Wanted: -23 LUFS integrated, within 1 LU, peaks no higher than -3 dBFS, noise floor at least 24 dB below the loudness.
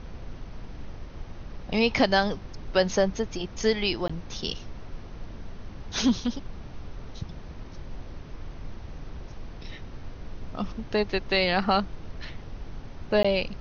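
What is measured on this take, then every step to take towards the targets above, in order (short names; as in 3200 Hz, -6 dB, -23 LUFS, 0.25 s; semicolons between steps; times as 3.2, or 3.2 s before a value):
dropouts 2; longest dropout 15 ms; noise floor -42 dBFS; noise floor target -51 dBFS; loudness -26.5 LUFS; peak -8.0 dBFS; loudness target -23.0 LUFS
-> interpolate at 4.08/13.23, 15 ms; noise print and reduce 9 dB; gain +3.5 dB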